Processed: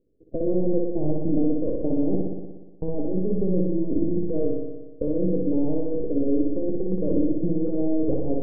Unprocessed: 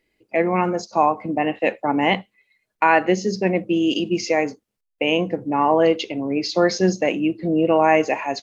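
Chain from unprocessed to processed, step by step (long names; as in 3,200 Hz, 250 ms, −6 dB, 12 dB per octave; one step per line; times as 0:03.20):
gain on one half-wave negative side −12 dB
elliptic low-pass filter 510 Hz, stop band 60 dB
compressor whose output falls as the input rises −28 dBFS, ratio −1
on a send: flutter between parallel walls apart 10.3 metres, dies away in 1.2 s
on the sum: level +3 dB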